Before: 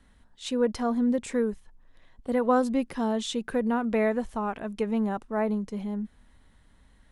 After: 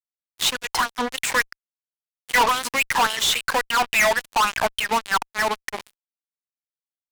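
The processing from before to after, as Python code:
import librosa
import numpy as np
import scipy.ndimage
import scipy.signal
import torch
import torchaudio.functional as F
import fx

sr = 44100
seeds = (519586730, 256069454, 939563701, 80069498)

y = fx.filter_lfo_highpass(x, sr, shape='sine', hz=3.6, low_hz=810.0, high_hz=3100.0, q=6.1)
y = fx.fuzz(y, sr, gain_db=40.0, gate_db=-42.0)
y = fx.am_noise(y, sr, seeds[0], hz=5.7, depth_pct=55)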